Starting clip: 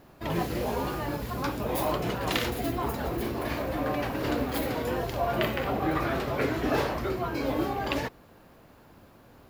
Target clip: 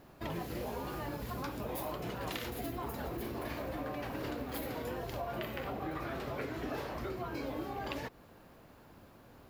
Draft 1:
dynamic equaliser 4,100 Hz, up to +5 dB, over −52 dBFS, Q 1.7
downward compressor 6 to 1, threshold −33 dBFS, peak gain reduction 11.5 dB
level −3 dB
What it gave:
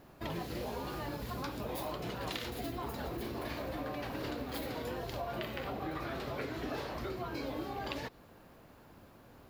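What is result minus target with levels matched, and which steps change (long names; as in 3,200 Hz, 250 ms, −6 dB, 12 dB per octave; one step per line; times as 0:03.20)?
4,000 Hz band +3.0 dB
change: dynamic equaliser 13,000 Hz, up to +5 dB, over −52 dBFS, Q 1.7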